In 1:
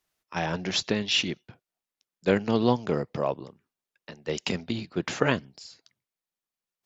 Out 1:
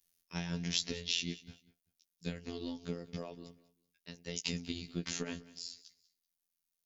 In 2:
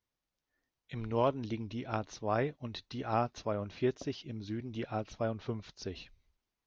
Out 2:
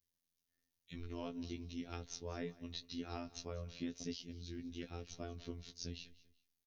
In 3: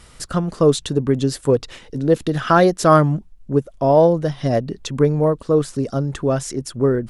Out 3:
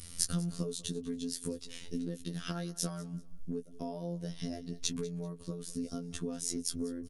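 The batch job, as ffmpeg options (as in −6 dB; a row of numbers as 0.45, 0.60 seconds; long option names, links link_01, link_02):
-filter_complex "[0:a]bandreject=frequency=7600:width=6.9,acompressor=threshold=-28dB:ratio=12,highshelf=frequency=4800:gain=7.5,afftfilt=real='hypot(re,im)*cos(PI*b)':imag='0':win_size=2048:overlap=0.75,equalizer=frequency=930:width=0.48:gain=-15,asplit=2[link_01][link_02];[link_02]adelay=16,volume=-10.5dB[link_03];[link_01][link_03]amix=inputs=2:normalize=0,asplit=2[link_04][link_05];[link_05]aecho=0:1:193|386:0.1|0.029[link_06];[link_04][link_06]amix=inputs=2:normalize=0,volume=2.5dB"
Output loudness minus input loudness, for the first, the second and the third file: −11.5, −10.0, −19.5 LU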